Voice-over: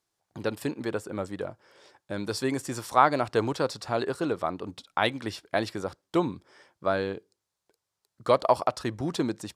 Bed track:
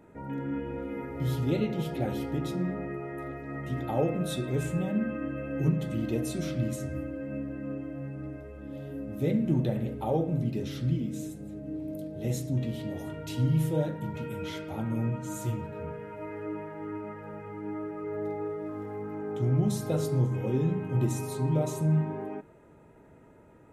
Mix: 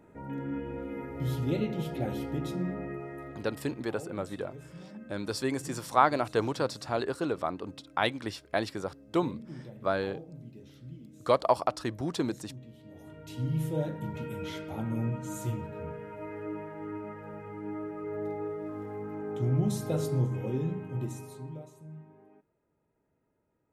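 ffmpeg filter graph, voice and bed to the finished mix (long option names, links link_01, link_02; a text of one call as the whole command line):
ffmpeg -i stem1.wav -i stem2.wav -filter_complex "[0:a]adelay=3000,volume=-2.5dB[link_01];[1:a]volume=14dB,afade=type=out:start_time=2.94:duration=0.84:silence=0.16788,afade=type=in:start_time=12.82:duration=1.19:silence=0.158489,afade=type=out:start_time=20.14:duration=1.57:silence=0.1[link_02];[link_01][link_02]amix=inputs=2:normalize=0" out.wav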